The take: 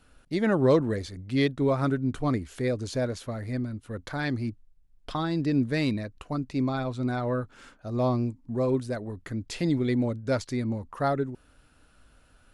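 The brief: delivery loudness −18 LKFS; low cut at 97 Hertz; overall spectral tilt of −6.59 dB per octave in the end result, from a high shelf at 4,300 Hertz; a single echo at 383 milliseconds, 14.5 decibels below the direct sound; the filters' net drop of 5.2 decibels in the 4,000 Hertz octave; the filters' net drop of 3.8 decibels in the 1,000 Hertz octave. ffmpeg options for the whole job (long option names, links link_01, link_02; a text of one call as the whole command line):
ffmpeg -i in.wav -af "highpass=97,equalizer=frequency=1000:width_type=o:gain=-5,equalizer=frequency=4000:width_type=o:gain=-4,highshelf=frequency=4300:gain=-3.5,aecho=1:1:383:0.188,volume=11.5dB" out.wav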